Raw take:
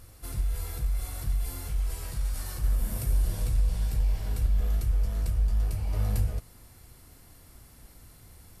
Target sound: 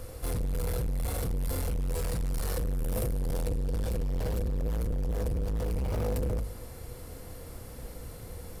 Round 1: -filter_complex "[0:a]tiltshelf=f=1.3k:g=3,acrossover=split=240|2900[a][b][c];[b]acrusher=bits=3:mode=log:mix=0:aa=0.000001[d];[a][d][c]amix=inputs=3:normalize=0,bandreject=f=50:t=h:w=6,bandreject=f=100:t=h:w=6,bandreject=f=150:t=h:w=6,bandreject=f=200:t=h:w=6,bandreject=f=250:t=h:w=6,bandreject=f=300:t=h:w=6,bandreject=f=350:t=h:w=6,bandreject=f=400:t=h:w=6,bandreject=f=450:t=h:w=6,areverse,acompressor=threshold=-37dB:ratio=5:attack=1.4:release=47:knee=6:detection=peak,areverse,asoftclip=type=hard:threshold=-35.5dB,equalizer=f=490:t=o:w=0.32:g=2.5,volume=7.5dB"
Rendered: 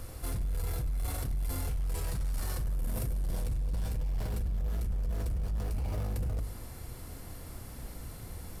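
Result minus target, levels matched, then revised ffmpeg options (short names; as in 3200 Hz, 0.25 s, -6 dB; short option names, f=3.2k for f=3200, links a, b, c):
compressor: peak gain reduction +9 dB; 500 Hz band -6.5 dB
-filter_complex "[0:a]tiltshelf=f=1.3k:g=3,acrossover=split=240|2900[a][b][c];[b]acrusher=bits=3:mode=log:mix=0:aa=0.000001[d];[a][d][c]amix=inputs=3:normalize=0,bandreject=f=50:t=h:w=6,bandreject=f=100:t=h:w=6,bandreject=f=150:t=h:w=6,bandreject=f=200:t=h:w=6,bandreject=f=250:t=h:w=6,bandreject=f=300:t=h:w=6,bandreject=f=350:t=h:w=6,bandreject=f=400:t=h:w=6,bandreject=f=450:t=h:w=6,areverse,acompressor=threshold=-26dB:ratio=5:attack=1.4:release=47:knee=6:detection=peak,areverse,asoftclip=type=hard:threshold=-35.5dB,equalizer=f=490:t=o:w=0.32:g=13,volume=7.5dB"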